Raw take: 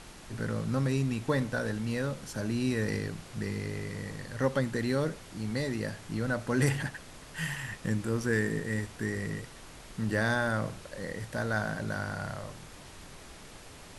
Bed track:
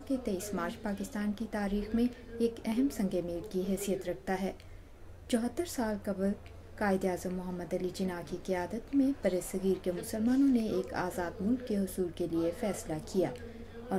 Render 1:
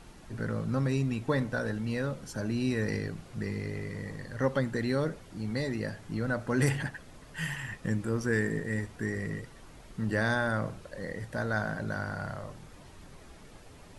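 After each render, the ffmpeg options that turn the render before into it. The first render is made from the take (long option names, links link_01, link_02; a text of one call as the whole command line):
ffmpeg -i in.wav -af "afftdn=noise_reduction=8:noise_floor=-49" out.wav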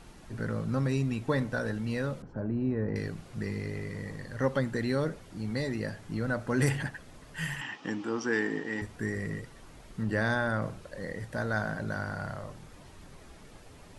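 ffmpeg -i in.wav -filter_complex "[0:a]asettb=1/sr,asplit=3[link_01][link_02][link_03];[link_01]atrim=end=2.224[link_04];[link_02]atrim=start=2.22:end=2.96,asetpts=PTS-STARTPTS,afade=type=in:duration=0.004:curve=qsin,afade=type=out:start_time=0.736:duration=0.004:curve=qsin,lowpass=1000[link_05];[link_03]atrim=start=2.956[link_06];[link_04][link_05]acrossfade=duration=0.004:curve1=hsin:curve2=qsin[link_07];[link_07][link_06]acrossfade=duration=0.004:curve1=qsin:curve2=hsin,asettb=1/sr,asplit=3[link_08][link_09][link_10];[link_08]atrim=end=7.614[link_11];[link_09]atrim=start=7.61:end=8.82,asetpts=PTS-STARTPTS,afade=type=in:duration=0.004:curve=qsin,afade=type=out:start_time=1.206:duration=0.004:curve=qsin,highpass=280,equalizer=frequency=290:width_type=q:width=4:gain=10,equalizer=frequency=550:width_type=q:width=4:gain=-5,equalizer=frequency=840:width_type=q:width=4:gain=9,equalizer=frequency=1200:width_type=q:width=4:gain=4,equalizer=frequency=3000:width_type=q:width=4:gain=10,equalizer=frequency=5500:width_type=q:width=4:gain=4,lowpass=frequency=6500:width=0.5412,lowpass=frequency=6500:width=1.3066[link_12];[link_10]atrim=start=8.816[link_13];[link_11][link_12]acrossfade=duration=0.004:curve1=hsin:curve2=qsin[link_14];[link_14][link_13]acrossfade=duration=0.004:curve1=qsin:curve2=hsin,asettb=1/sr,asplit=3[link_15][link_16][link_17];[link_15]atrim=end=10.034[link_18];[link_16]atrim=start=10.03:end=10.62,asetpts=PTS-STARTPTS,afade=type=in:duration=0.004:curve=qsin,afade=type=out:start_time=0.586:duration=0.004:curve=qsin,highshelf=frequency=5600:gain=-5.5[link_19];[link_17]atrim=start=10.616[link_20];[link_18][link_19]acrossfade=duration=0.004:curve1=hsin:curve2=qsin[link_21];[link_21][link_20]acrossfade=duration=0.004:curve1=qsin:curve2=hsin" out.wav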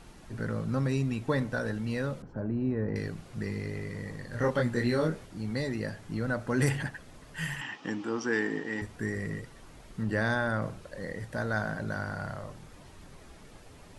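ffmpeg -i in.wav -filter_complex "[0:a]asettb=1/sr,asplit=3[link_01][link_02][link_03];[link_01]atrim=end=4.304[link_04];[link_02]atrim=start=4.3:end=5.26,asetpts=PTS-STARTPTS,afade=type=in:duration=0.004:curve=qsin,afade=type=out:start_time=0.956:duration=0.004:curve=qsin,asplit=2[link_05][link_06];[link_06]adelay=25,volume=-2dB[link_07];[link_05][link_07]amix=inputs=2:normalize=0,atrim=end_sample=42336[link_08];[link_03]atrim=start=5.256[link_09];[link_04][link_08]acrossfade=duration=0.004:curve1=hsin:curve2=qsin[link_10];[link_10][link_09]acrossfade=duration=0.004:curve1=qsin:curve2=hsin" out.wav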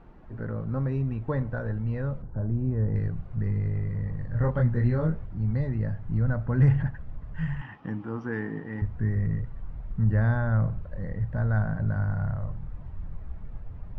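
ffmpeg -i in.wav -af "lowpass=1300,asubboost=boost=9:cutoff=110" out.wav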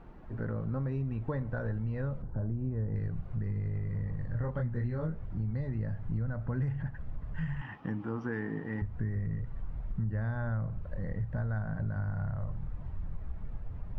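ffmpeg -i in.wav -af "acompressor=threshold=-30dB:ratio=6" out.wav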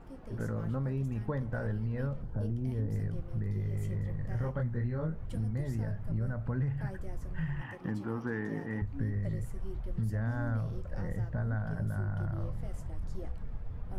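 ffmpeg -i in.wav -i bed.wav -filter_complex "[1:a]volume=-16.5dB[link_01];[0:a][link_01]amix=inputs=2:normalize=0" out.wav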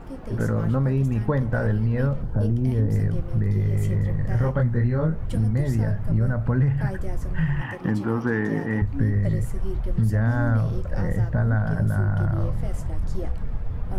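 ffmpeg -i in.wav -af "volume=11.5dB" out.wav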